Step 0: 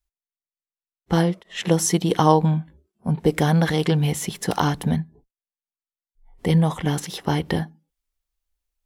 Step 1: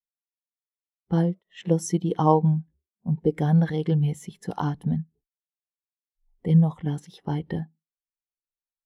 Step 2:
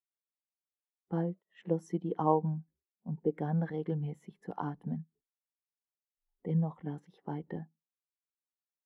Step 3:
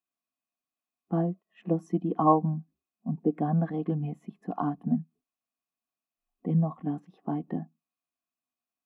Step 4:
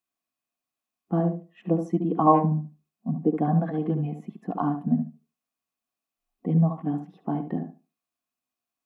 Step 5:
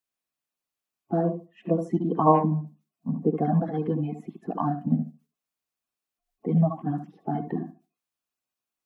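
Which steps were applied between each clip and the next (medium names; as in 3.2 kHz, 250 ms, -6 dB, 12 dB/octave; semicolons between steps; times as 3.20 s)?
spectral contrast expander 1.5:1; trim -3 dB
three-band isolator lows -13 dB, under 170 Hz, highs -18 dB, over 2.1 kHz; trim -7.5 dB
small resonant body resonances 250/690/1100/2500 Hz, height 16 dB, ringing for 30 ms; trim -2.5 dB
tape echo 71 ms, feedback 21%, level -6 dB, low-pass 1.6 kHz; trim +3 dB
coarse spectral quantiser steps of 30 dB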